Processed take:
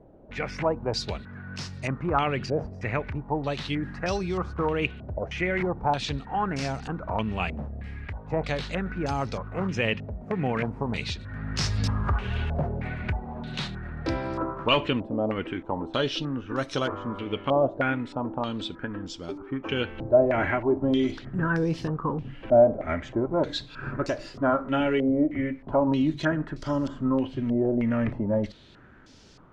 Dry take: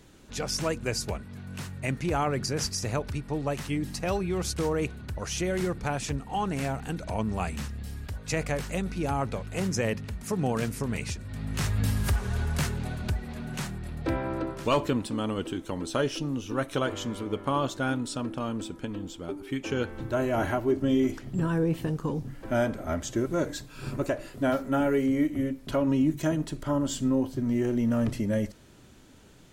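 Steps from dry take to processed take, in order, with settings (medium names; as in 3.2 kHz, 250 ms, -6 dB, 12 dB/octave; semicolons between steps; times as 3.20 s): step-sequenced low-pass 3.2 Hz 650–5200 Hz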